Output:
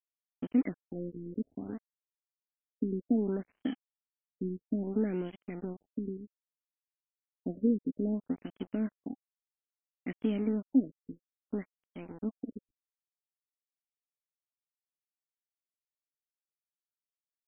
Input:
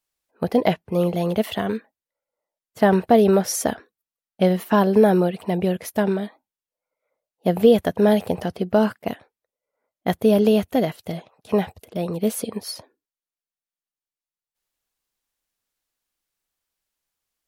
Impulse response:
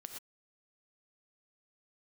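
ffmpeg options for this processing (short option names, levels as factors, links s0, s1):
-filter_complex "[0:a]asplit=3[s0][s1][s2];[s0]bandpass=f=270:t=q:w=8,volume=1[s3];[s1]bandpass=f=2290:t=q:w=8,volume=0.501[s4];[s2]bandpass=f=3010:t=q:w=8,volume=0.355[s5];[s3][s4][s5]amix=inputs=3:normalize=0,aeval=exprs='sgn(val(0))*max(abs(val(0))-0.00501,0)':c=same,afftfilt=real='re*lt(b*sr/1024,480*pow(3400/480,0.5+0.5*sin(2*PI*0.61*pts/sr)))':imag='im*lt(b*sr/1024,480*pow(3400/480,0.5+0.5*sin(2*PI*0.61*pts/sr)))':win_size=1024:overlap=0.75,volume=1.12"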